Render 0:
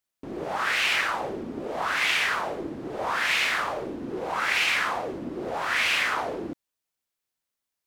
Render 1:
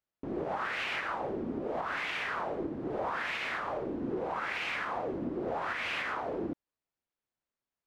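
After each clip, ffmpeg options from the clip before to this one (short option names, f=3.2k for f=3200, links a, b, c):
-af "lowpass=f=1.2k:p=1,alimiter=level_in=1dB:limit=-24dB:level=0:latency=1:release=255,volume=-1dB"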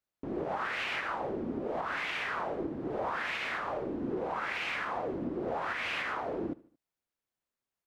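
-af "aecho=1:1:75|150|225:0.0891|0.0428|0.0205"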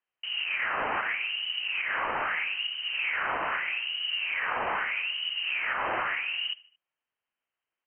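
-af "highshelf=f=2k:g=7.5,lowpass=f=2.7k:t=q:w=0.5098,lowpass=f=2.7k:t=q:w=0.6013,lowpass=f=2.7k:t=q:w=0.9,lowpass=f=2.7k:t=q:w=2.563,afreqshift=-3200,volume=2.5dB"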